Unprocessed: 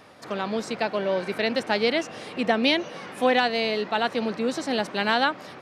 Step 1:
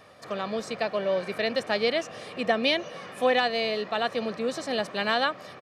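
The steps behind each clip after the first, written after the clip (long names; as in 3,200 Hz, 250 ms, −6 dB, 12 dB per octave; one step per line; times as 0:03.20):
comb filter 1.7 ms, depth 39%
level −3 dB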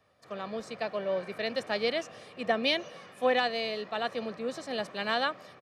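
multiband upward and downward expander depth 40%
level −4.5 dB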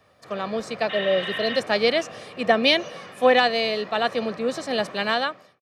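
fade-out on the ending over 0.66 s
healed spectral selection 0:00.92–0:01.54, 820–3,900 Hz after
level +9 dB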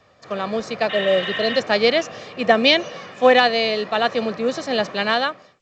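level +3.5 dB
A-law companding 128 kbit/s 16,000 Hz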